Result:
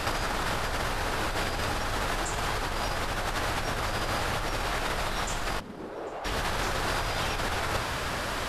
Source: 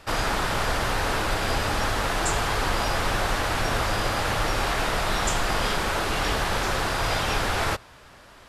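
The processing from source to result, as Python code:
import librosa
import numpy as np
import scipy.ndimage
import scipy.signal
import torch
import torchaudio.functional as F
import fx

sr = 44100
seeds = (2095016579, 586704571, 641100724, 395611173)

y = fx.over_compress(x, sr, threshold_db=-36.0, ratio=-1.0)
y = fx.bandpass_q(y, sr, hz=fx.line((5.59, 190.0), (6.24, 700.0)), q=1.8, at=(5.59, 6.24), fade=0.02)
y = fx.echo_feedback(y, sr, ms=796, feedback_pct=55, wet_db=-23.5)
y = y * librosa.db_to_amplitude(6.5)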